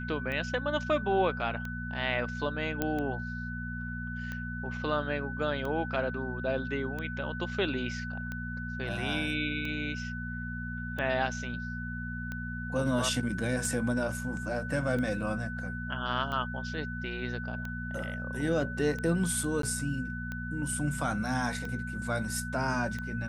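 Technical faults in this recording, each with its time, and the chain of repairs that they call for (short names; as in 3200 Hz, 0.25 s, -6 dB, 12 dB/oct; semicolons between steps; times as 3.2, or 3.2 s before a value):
hum 60 Hz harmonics 4 -38 dBFS
tick 45 rpm -24 dBFS
tone 1500 Hz -39 dBFS
2.82 pop -15 dBFS
19.62–19.63 gap 13 ms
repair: de-click; notch 1500 Hz, Q 30; de-hum 60 Hz, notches 4; interpolate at 19.62, 13 ms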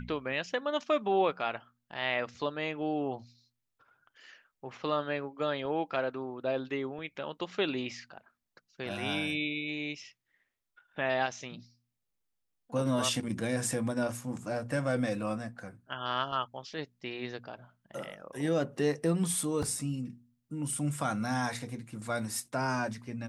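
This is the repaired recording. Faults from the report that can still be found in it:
none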